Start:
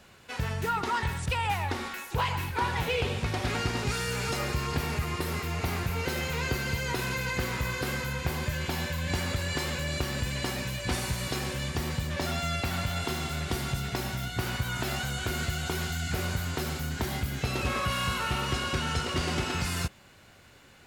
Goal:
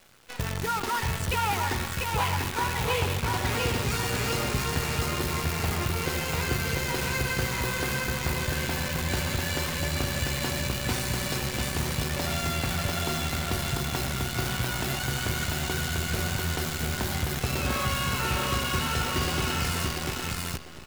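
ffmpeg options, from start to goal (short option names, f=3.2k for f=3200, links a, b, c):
-af "aecho=1:1:694|1388|2082|2776|3470:0.708|0.262|0.0969|0.0359|0.0133,acrusher=bits=6:dc=4:mix=0:aa=0.000001"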